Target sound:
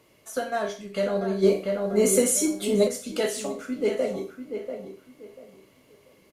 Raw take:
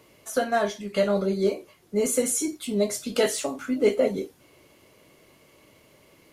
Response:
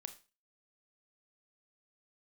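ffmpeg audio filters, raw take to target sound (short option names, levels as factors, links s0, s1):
-filter_complex "[0:a]asplit=2[s0][s1];[s1]adelay=690,lowpass=f=2000:p=1,volume=0.398,asplit=2[s2][s3];[s3]adelay=690,lowpass=f=2000:p=1,volume=0.25,asplit=2[s4][s5];[s5]adelay=690,lowpass=f=2000:p=1,volume=0.25[s6];[s0][s2][s4][s6]amix=inputs=4:normalize=0[s7];[1:a]atrim=start_sample=2205,asetrate=40131,aresample=44100[s8];[s7][s8]afir=irnorm=-1:irlink=0,asplit=3[s9][s10][s11];[s9]afade=t=out:st=1.42:d=0.02[s12];[s10]acontrast=74,afade=t=in:st=1.42:d=0.02,afade=t=out:st=2.87:d=0.02[s13];[s11]afade=t=in:st=2.87:d=0.02[s14];[s12][s13][s14]amix=inputs=3:normalize=0"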